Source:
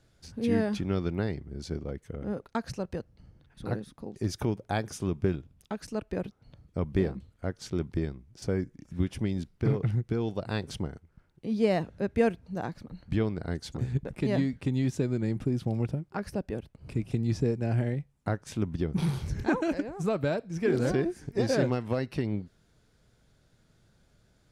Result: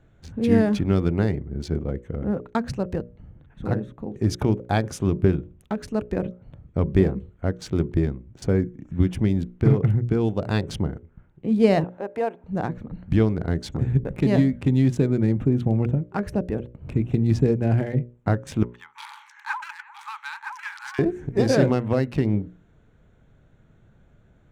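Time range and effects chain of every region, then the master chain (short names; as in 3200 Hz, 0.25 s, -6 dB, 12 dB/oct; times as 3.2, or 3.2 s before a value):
11.84–12.44 HPF 330 Hz + bell 830 Hz +13.5 dB 1.1 oct + compressor 1.5:1, threshold -49 dBFS
18.63–20.99 Chebyshev high-pass 830 Hz, order 10 + high shelf 9400 Hz -9 dB + echo 0.964 s -5.5 dB
whole clip: Wiener smoothing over 9 samples; low shelf 410 Hz +4 dB; notches 60/120/180/240/300/360/420/480/540/600 Hz; gain +6 dB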